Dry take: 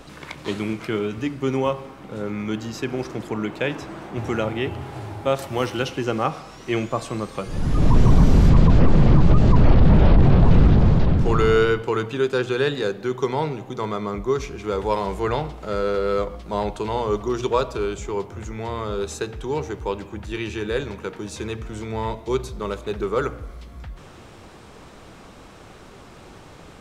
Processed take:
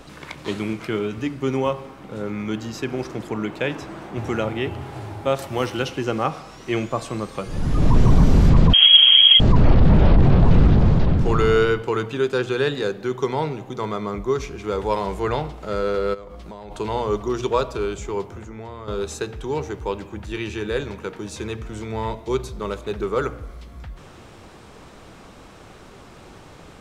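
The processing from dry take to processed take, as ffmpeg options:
-filter_complex "[0:a]asettb=1/sr,asplit=3[a][b][c];[a]atrim=end=8.734[d];[b]atrim=start=8.73:end=9.4,asetpts=PTS-STARTPTS,afade=t=in:d=0.004:c=qsin,afade=t=out:st=0.666:d=0.004:c=qsin,lowpass=f=2.8k:t=q:w=0.5098,lowpass=f=2.8k:t=q:w=0.6013,lowpass=f=2.8k:t=q:w=0.9,lowpass=f=2.8k:t=q:w=2.563,afreqshift=-3300[e];[c]atrim=start=9.396[f];[d][e]acrossfade=d=0.004:c1=hsin:c2=qsin[g];[g][f]acrossfade=d=0.004:c1=qsin:c2=hsin,asplit=3[h][i][j];[h]afade=t=out:st=16.13:d=0.02[k];[i]acompressor=threshold=-33dB:ratio=10:attack=3.2:release=140:knee=1:detection=peak,afade=t=in:st=16.13:d=0.02,afade=t=out:st=16.7:d=0.02[l];[j]afade=t=in:st=16.7:d=0.02[m];[k][l][m]amix=inputs=3:normalize=0,asettb=1/sr,asplit=3[n][o][p];[n]atrim=end=18.364[q];[o]atrim=start=18.36:end=18.88,asetpts=PTS-STARTPTS,afade=t=in:d=0.004:c=qsin,afade=t=out:st=0.516:d=0.004:c=qsin,acrossover=split=140|1700[r][s][t];[r]acompressor=threshold=-42dB:ratio=4[u];[s]acompressor=threshold=-35dB:ratio=4[v];[t]acompressor=threshold=-54dB:ratio=4[w];[u][v][w]amix=inputs=3:normalize=0[x];[p]atrim=start=18.876[y];[q][x]acrossfade=d=0.004:c1=hsin:c2=qsin[z];[z][y]acrossfade=d=0.004:c1=qsin:c2=hsin"

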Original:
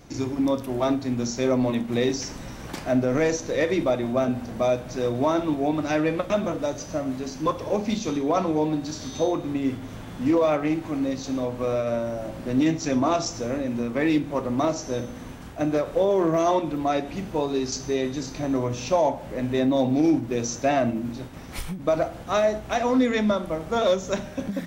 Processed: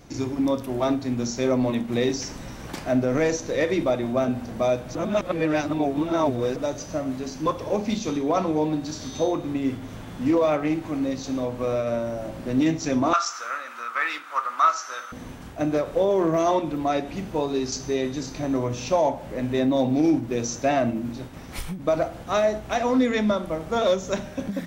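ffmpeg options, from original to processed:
-filter_complex "[0:a]asettb=1/sr,asplit=3[a][b][c];[a]atrim=end=13.134[d];[b]atrim=start=13.13:end=15.12,asetpts=PTS-STARTPTS,afade=t=in:d=0.004:c=qsin,afade=t=out:st=1.986:d=0.004:c=qsin,highpass=f=1.3k:t=q:w=9.2[e];[c]atrim=start=15.116[f];[d][e]acrossfade=d=0.004:c1=hsin:c2=qsin[g];[g][f]acrossfade=d=0.004:c1=qsin:c2=hsin,asplit=3[h][i][j];[h]atrim=end=4.952[k];[i]atrim=start=4.948:end=6.562,asetpts=PTS-STARTPTS,areverse[l];[j]atrim=start=6.558[m];[k][l]acrossfade=d=0.004:c1=hsin:c2=hsin[n];[n][m]acrossfade=d=0.004:c1=hsin:c2=hsin"

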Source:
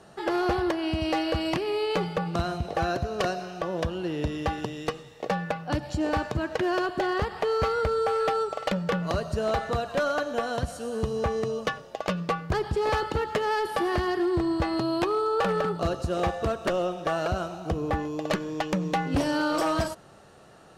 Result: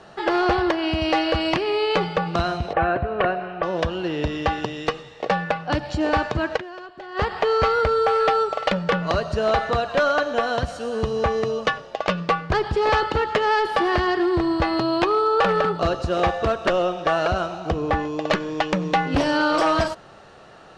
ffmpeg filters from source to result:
-filter_complex "[0:a]asettb=1/sr,asplit=3[a][b][c];[a]atrim=end=2.734[d];[b]atrim=start=2.73:end=3.63,asetpts=PTS-STARTPTS,afade=t=in:d=0.004:c=qsin,afade=t=out:st=0.896:d=0.004:c=qsin,lowpass=f=2.5k:w=0.5412,lowpass=f=2.5k:w=1.3066[e];[c]atrim=start=3.626[f];[d][e]acrossfade=d=0.004:c1=hsin:c2=qsin[g];[g][f]acrossfade=d=0.004:c1=qsin:c2=hsin,asplit=3[h][i][j];[h]atrim=end=6.85,asetpts=PTS-STARTPTS,afade=t=out:st=6.56:d=0.29:c=exp:silence=0.133352[k];[i]atrim=start=6.85:end=6.91,asetpts=PTS-STARTPTS,volume=-17.5dB[l];[j]atrim=start=6.91,asetpts=PTS-STARTPTS,afade=t=in:d=0.29:c=exp:silence=0.133352[m];[k][l][m]concat=n=3:v=0:a=1,lowpass=4.7k,equalizer=f=140:w=0.32:g=-6,volume=8.5dB"

